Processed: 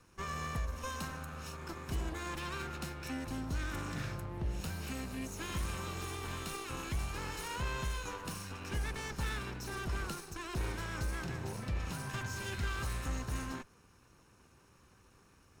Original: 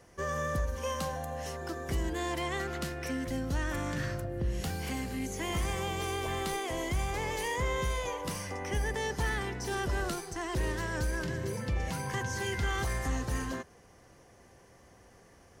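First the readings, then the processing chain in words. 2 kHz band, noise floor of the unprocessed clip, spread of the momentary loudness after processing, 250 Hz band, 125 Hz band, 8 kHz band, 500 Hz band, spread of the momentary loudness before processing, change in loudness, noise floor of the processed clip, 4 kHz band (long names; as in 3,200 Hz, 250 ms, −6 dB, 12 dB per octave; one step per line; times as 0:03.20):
−5.5 dB, −59 dBFS, 4 LU, −5.5 dB, −4.0 dB, −5.0 dB, −10.5 dB, 4 LU, −5.5 dB, −64 dBFS, −4.5 dB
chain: lower of the sound and its delayed copy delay 0.75 ms
level −4 dB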